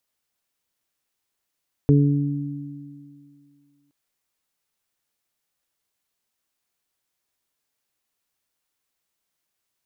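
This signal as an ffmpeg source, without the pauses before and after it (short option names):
-f lavfi -i "aevalsrc='0.237*pow(10,-3*t/2.03)*sin(2*PI*143*t)+0.158*pow(10,-3*t/2.49)*sin(2*PI*286*t)+0.1*pow(10,-3*t/0.75)*sin(2*PI*429*t)':d=2.02:s=44100"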